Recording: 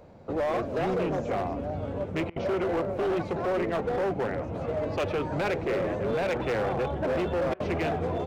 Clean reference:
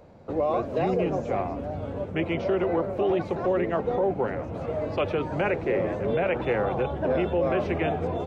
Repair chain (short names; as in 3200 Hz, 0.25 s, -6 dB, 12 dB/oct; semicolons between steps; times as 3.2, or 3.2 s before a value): clip repair -24 dBFS; interpolate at 2.3/7.54, 60 ms